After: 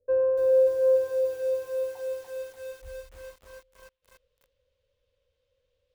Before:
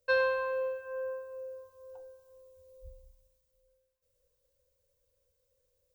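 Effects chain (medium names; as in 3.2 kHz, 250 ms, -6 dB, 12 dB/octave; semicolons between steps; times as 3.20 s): low-pass sweep 410 Hz -> 3.2 kHz, 0.17–3.63 s; bit-crushed delay 292 ms, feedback 80%, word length 9-bit, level -3.5 dB; trim +3 dB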